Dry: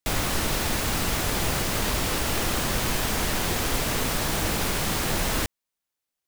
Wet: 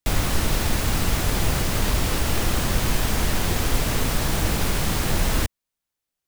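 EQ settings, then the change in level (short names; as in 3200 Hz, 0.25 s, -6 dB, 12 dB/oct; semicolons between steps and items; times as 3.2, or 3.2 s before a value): low shelf 160 Hz +8.5 dB; 0.0 dB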